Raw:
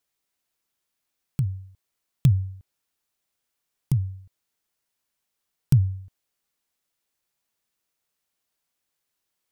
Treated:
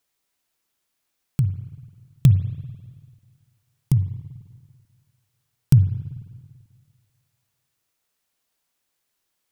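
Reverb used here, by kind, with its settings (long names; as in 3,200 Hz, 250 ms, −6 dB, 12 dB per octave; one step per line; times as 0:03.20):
spring reverb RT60 1.8 s, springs 49/55 ms, chirp 40 ms, DRR 11.5 dB
level +4 dB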